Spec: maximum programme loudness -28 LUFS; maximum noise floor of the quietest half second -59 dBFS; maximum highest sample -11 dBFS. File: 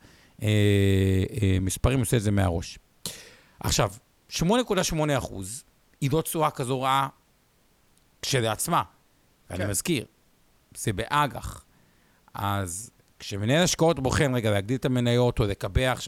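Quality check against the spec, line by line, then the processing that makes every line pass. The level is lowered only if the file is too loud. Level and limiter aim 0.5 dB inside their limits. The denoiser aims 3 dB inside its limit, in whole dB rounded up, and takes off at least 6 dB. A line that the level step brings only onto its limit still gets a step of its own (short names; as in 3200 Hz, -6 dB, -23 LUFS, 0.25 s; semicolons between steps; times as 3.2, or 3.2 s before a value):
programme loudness -25.5 LUFS: fail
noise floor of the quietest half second -64 dBFS: OK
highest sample -8.5 dBFS: fail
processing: gain -3 dB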